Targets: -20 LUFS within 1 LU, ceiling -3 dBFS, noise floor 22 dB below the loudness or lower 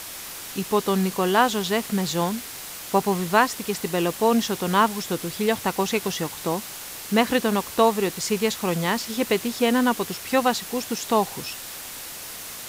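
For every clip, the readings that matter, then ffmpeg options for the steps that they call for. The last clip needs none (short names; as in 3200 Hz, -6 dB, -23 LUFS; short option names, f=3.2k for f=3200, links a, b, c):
noise floor -37 dBFS; noise floor target -46 dBFS; loudness -24.0 LUFS; peak -3.5 dBFS; loudness target -20.0 LUFS
-> -af "afftdn=nr=9:nf=-37"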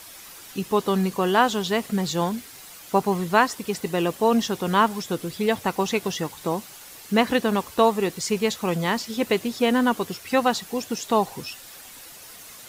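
noise floor -44 dBFS; noise floor target -46 dBFS
-> -af "afftdn=nr=6:nf=-44"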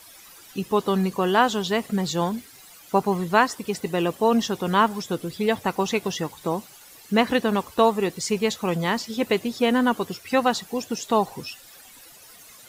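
noise floor -48 dBFS; loudness -24.0 LUFS; peak -4.0 dBFS; loudness target -20.0 LUFS
-> -af "volume=4dB,alimiter=limit=-3dB:level=0:latency=1"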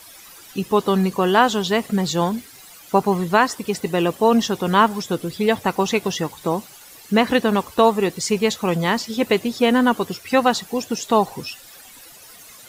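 loudness -20.0 LUFS; peak -3.0 dBFS; noise floor -44 dBFS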